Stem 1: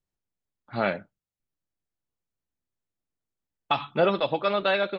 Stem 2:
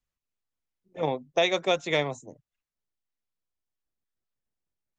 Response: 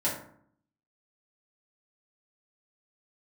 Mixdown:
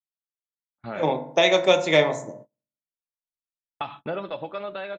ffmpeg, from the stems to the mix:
-filter_complex "[0:a]acompressor=threshold=-27dB:ratio=2.5,lowpass=3300,adelay=100,volume=-6.5dB,asplit=2[link_01][link_02];[link_02]volume=-21.5dB[link_03];[1:a]highpass=140,volume=0dB,asplit=2[link_04][link_05];[link_05]volume=-11dB[link_06];[2:a]atrim=start_sample=2205[link_07];[link_03][link_06]amix=inputs=2:normalize=0[link_08];[link_08][link_07]afir=irnorm=-1:irlink=0[link_09];[link_01][link_04][link_09]amix=inputs=3:normalize=0,agate=range=-28dB:threshold=-47dB:ratio=16:detection=peak,dynaudnorm=framelen=430:gausssize=5:maxgain=4dB"

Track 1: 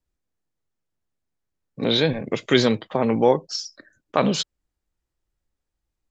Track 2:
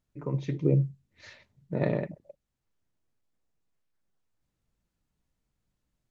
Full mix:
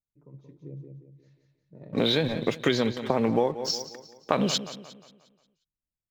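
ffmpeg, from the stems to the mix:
ffmpeg -i stem1.wav -i stem2.wav -filter_complex "[0:a]aeval=exprs='sgn(val(0))*max(abs(val(0))-0.00562,0)':channel_layout=same,adelay=150,volume=1dB,asplit=2[link_01][link_02];[link_02]volume=-17dB[link_03];[1:a]equalizer=frequency=2000:width=0.42:gain=-10.5,volume=-17.5dB,asplit=2[link_04][link_05];[link_05]volume=-4.5dB[link_06];[link_03][link_06]amix=inputs=2:normalize=0,aecho=0:1:178|356|534|712|890|1068:1|0.43|0.185|0.0795|0.0342|0.0147[link_07];[link_01][link_04][link_07]amix=inputs=3:normalize=0,acompressor=threshold=-19dB:ratio=12" out.wav

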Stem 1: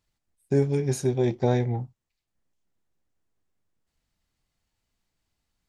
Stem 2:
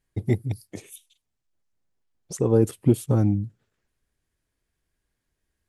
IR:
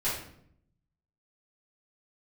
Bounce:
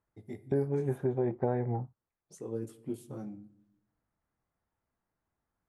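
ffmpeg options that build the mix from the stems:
-filter_complex "[0:a]lowpass=frequency=1500:width=0.5412,lowpass=frequency=1500:width=1.3066,aemphasis=mode=production:type=bsi,acompressor=threshold=-29dB:ratio=2.5,volume=0.5dB[link_01];[1:a]highpass=210,flanger=delay=17:depth=6.9:speed=0.76,volume=-15.5dB,asplit=2[link_02][link_03];[link_03]volume=-19.5dB[link_04];[2:a]atrim=start_sample=2205[link_05];[link_04][link_05]afir=irnorm=-1:irlink=0[link_06];[link_01][link_02][link_06]amix=inputs=3:normalize=0,equalizer=frequency=70:width_type=o:width=2:gain=6"

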